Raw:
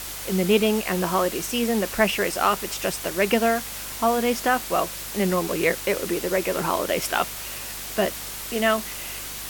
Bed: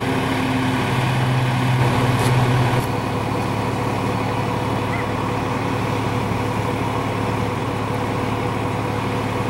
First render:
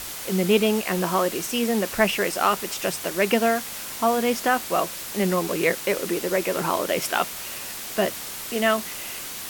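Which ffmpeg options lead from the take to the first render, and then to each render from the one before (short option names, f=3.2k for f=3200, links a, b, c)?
-af "bandreject=f=50:t=h:w=4,bandreject=f=100:t=h:w=4,bandreject=f=150:t=h:w=4"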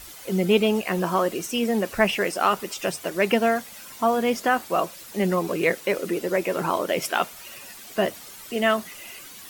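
-af "afftdn=nr=11:nf=-35"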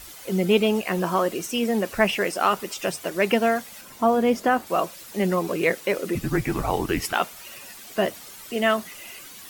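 -filter_complex "[0:a]asettb=1/sr,asplit=3[a][b][c];[a]atrim=end=3.814[d];[b]atrim=start=3.81:end=4.67,asetpts=PTS-STARTPTS,afade=t=in:d=0.004:c=qsin,afade=t=out:st=0.856:d=0.004:c=qsin,tiltshelf=f=970:g=4[e];[c]atrim=start=4.666[f];[d][e]acrossfade=d=0.004:c1=hsin:c2=qsin[g];[g][f]acrossfade=d=0.004:c1=qsin:c2=hsin,asettb=1/sr,asplit=3[h][i][j];[h]atrim=end=6.154[k];[i]atrim=start=6.15:end=7.13,asetpts=PTS-STARTPTS,afade=t=in:d=0.004:c=qsin,afade=t=out:st=0.976:d=0.004:c=qsin,afreqshift=-220[l];[j]atrim=start=7.126[m];[k][l]acrossfade=d=0.004:c1=hsin:c2=qsin[n];[n][m]acrossfade=d=0.004:c1=qsin:c2=hsin"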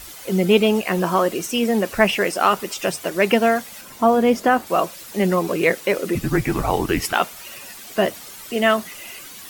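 -af "volume=4dB"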